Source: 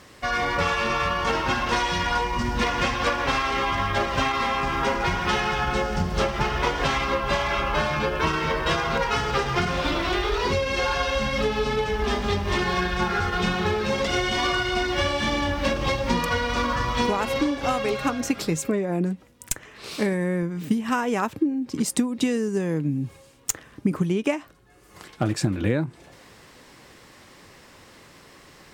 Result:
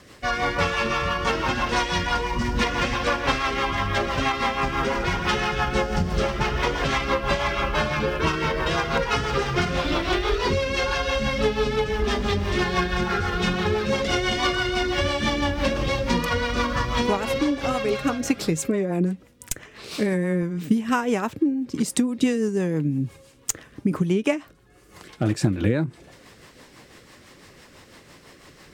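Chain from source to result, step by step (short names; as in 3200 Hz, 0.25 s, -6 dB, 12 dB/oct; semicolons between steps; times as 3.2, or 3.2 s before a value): rotary speaker horn 6 Hz; gain +3 dB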